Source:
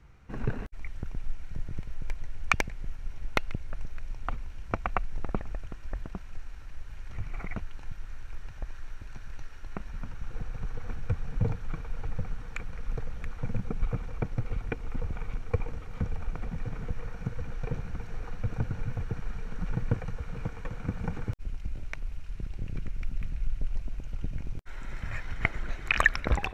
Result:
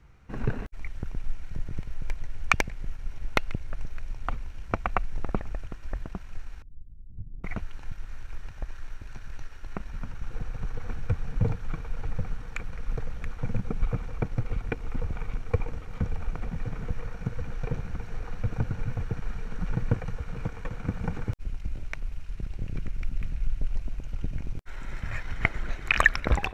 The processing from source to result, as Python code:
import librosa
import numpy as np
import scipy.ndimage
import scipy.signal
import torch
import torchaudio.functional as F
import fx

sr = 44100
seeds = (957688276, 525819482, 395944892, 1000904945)

p1 = fx.ladder_lowpass(x, sr, hz=310.0, resonance_pct=25, at=(6.62, 7.44))
p2 = np.sign(p1) * np.maximum(np.abs(p1) - 10.0 ** (-41.0 / 20.0), 0.0)
y = p1 + (p2 * librosa.db_to_amplitude(-9.0))